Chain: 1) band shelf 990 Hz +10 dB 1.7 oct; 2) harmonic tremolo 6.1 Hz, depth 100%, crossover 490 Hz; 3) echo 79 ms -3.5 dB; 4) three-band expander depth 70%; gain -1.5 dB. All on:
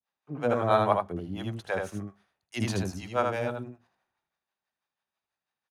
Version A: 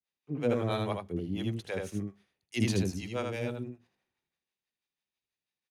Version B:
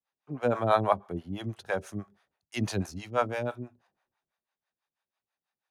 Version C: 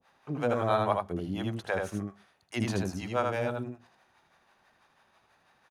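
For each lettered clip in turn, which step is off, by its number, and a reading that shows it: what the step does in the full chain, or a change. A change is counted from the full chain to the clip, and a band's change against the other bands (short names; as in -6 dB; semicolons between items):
1, 1 kHz band -12.5 dB; 3, crest factor change +2.0 dB; 4, 250 Hz band +2.0 dB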